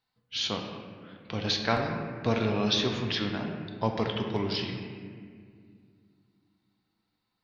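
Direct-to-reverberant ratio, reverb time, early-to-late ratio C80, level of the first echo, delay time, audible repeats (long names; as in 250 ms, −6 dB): 2.0 dB, 2.1 s, 5.5 dB, no echo audible, no echo audible, no echo audible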